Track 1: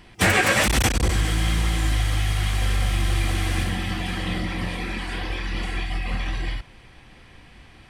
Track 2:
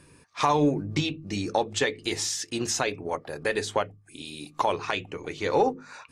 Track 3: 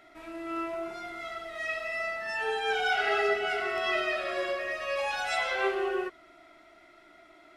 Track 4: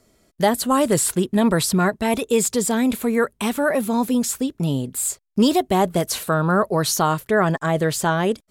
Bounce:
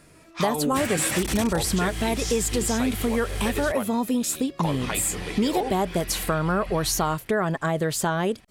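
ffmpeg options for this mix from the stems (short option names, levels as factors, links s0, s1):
-filter_complex "[0:a]highshelf=f=5500:g=8.5,adelay=550,volume=0.501,asplit=3[s0][s1][s2];[s0]atrim=end=3.72,asetpts=PTS-STARTPTS,afade=t=out:st=3.716:d=0.004:c=hsin[s3];[s1]atrim=start=3.72:end=4.65,asetpts=PTS-STARTPTS,volume=0[s4];[s2]atrim=start=4.65,asetpts=PTS-STARTPTS,afade=t=in:d=0.004:c=hsin[s5];[s3][s4][s5]concat=n=3:v=0:a=1[s6];[1:a]volume=1[s7];[2:a]acrossover=split=430|3000[s8][s9][s10];[s9]acompressor=threshold=0.00355:ratio=3[s11];[s8][s11][s10]amix=inputs=3:normalize=0,volume=0.355[s12];[3:a]volume=1.12[s13];[s6][s7][s12][s13]amix=inputs=4:normalize=0,acompressor=threshold=0.0794:ratio=3"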